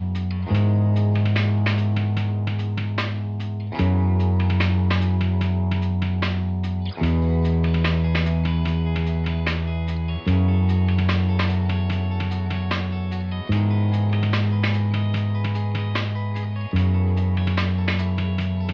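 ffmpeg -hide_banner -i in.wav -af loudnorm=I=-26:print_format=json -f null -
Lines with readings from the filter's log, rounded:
"input_i" : "-22.4",
"input_tp" : "-7.7",
"input_lra" : "1.1",
"input_thresh" : "-32.4",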